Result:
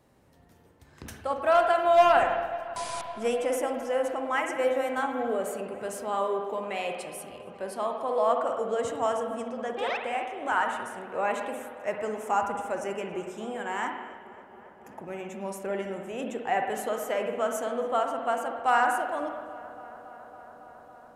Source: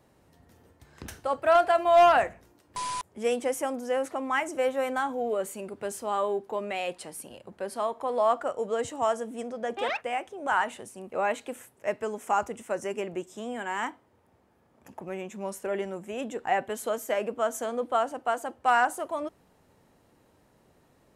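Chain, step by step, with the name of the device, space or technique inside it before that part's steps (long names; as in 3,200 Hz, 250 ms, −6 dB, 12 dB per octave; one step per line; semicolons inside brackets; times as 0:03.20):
dub delay into a spring reverb (feedback echo with a low-pass in the loop 277 ms, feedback 85%, low-pass 4,200 Hz, level −19.5 dB; spring reverb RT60 1.3 s, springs 51/55 ms, chirp 55 ms, DRR 3.5 dB)
level −1.5 dB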